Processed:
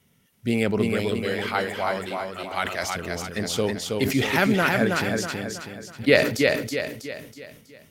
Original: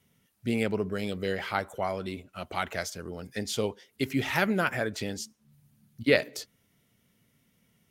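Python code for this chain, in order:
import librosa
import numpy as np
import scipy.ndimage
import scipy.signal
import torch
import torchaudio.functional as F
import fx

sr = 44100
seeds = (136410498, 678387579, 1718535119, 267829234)

y = fx.low_shelf(x, sr, hz=330.0, db=-9.5, at=(1.11, 2.84))
y = fx.echo_feedback(y, sr, ms=323, feedback_pct=44, wet_db=-3.5)
y = fx.sustainer(y, sr, db_per_s=76.0)
y = F.gain(torch.from_numpy(y), 4.5).numpy()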